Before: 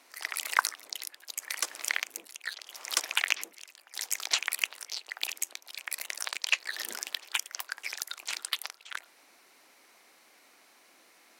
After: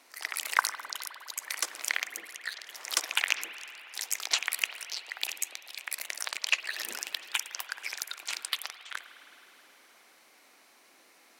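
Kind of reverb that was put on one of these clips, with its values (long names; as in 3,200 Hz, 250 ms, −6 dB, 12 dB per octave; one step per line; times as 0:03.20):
spring reverb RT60 3.6 s, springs 51 ms, chirp 70 ms, DRR 10.5 dB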